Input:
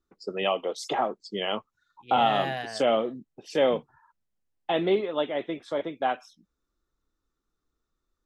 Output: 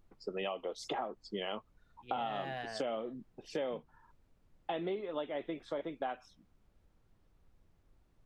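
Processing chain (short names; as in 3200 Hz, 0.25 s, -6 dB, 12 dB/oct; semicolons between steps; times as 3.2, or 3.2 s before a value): high shelf 5300 Hz -9 dB; added noise brown -62 dBFS; compressor 6:1, threshold -30 dBFS, peak gain reduction 12 dB; gain -4 dB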